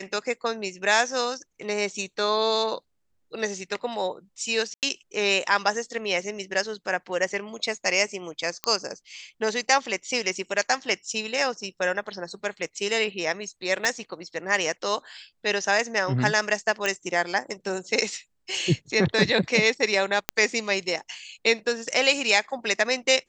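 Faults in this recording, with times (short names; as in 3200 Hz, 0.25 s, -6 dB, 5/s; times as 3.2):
4.74–4.83 gap 88 ms
8.64 pop -10 dBFS
13.85 pop
16.86 pop -11 dBFS
20.29 pop -5 dBFS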